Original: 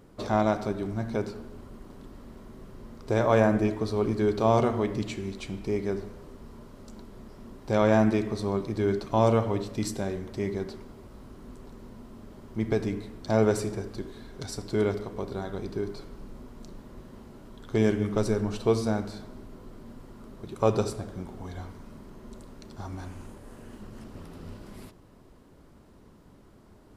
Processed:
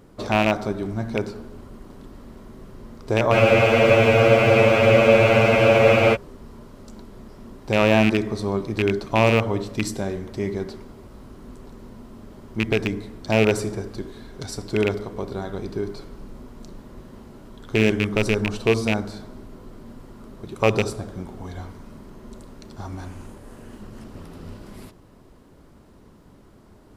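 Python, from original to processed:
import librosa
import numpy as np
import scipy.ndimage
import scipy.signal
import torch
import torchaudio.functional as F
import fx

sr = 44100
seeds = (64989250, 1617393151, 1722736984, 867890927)

y = fx.rattle_buzz(x, sr, strikes_db=-25.0, level_db=-15.0)
y = fx.spec_freeze(y, sr, seeds[0], at_s=3.35, hold_s=2.79)
y = y * librosa.db_to_amplitude(4.0)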